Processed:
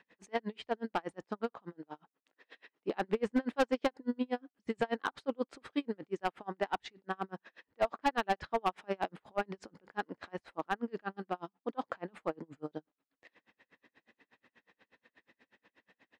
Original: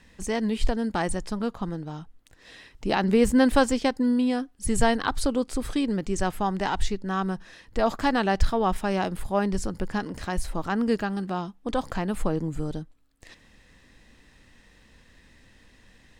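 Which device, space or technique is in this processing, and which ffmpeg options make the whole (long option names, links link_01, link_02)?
helicopter radio: -filter_complex "[0:a]asettb=1/sr,asplit=3[link_01][link_02][link_03];[link_01]atrim=end=1.724[link_04];[link_02]atrim=start=1.72:end=2.89,asetpts=PTS-STARTPTS,afade=type=in:duration=0.004:curve=qsin,afade=type=out:start_time=1.166:duration=0.004:curve=qsin,highpass=200[link_05];[link_03]atrim=start=2.886[link_06];[link_04][link_05]acrossfade=duration=0.004:curve1=hsin:curve2=qsin[link_07];[link_07][link_06]acrossfade=duration=0.004:curve1=qsin:curve2=hsin,highpass=330,lowpass=2600,aeval=exprs='val(0)*pow(10,-38*(0.5-0.5*cos(2*PI*8.3*n/s))/20)':channel_layout=same,asoftclip=type=hard:threshold=-22.5dB"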